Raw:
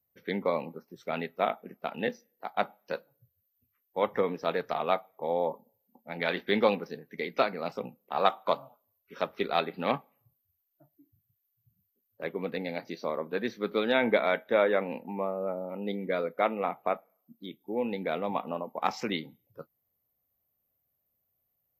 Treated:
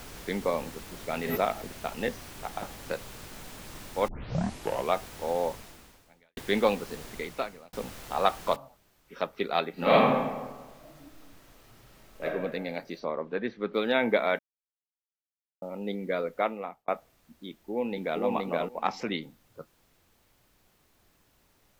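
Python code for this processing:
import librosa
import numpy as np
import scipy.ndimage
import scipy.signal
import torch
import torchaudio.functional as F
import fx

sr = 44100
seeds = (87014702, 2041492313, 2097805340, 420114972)

y = fx.pre_swell(x, sr, db_per_s=44.0, at=(1.23, 1.64), fade=0.02)
y = fx.over_compress(y, sr, threshold_db=-30.0, ratio=-0.5, at=(2.5, 2.91), fade=0.02)
y = fx.noise_floor_step(y, sr, seeds[0], at_s=8.56, before_db=-44, after_db=-66, tilt_db=3.0)
y = fx.reverb_throw(y, sr, start_s=9.73, length_s=2.51, rt60_s=1.3, drr_db=-10.0)
y = fx.env_lowpass_down(y, sr, base_hz=2900.0, full_db=-31.0, at=(12.99, 13.73), fade=0.02)
y = fx.echo_throw(y, sr, start_s=17.49, length_s=0.72, ms=470, feedback_pct=10, wet_db=-0.5)
y = fx.high_shelf(y, sr, hz=10000.0, db=-11.0, at=(18.82, 19.22))
y = fx.edit(y, sr, fx.tape_start(start_s=4.08, length_s=0.86),
    fx.fade_out_span(start_s=5.48, length_s=0.89, curve='qua'),
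    fx.fade_out_span(start_s=7.06, length_s=0.67),
    fx.silence(start_s=14.39, length_s=1.23),
    fx.fade_out_span(start_s=16.37, length_s=0.51), tone=tone)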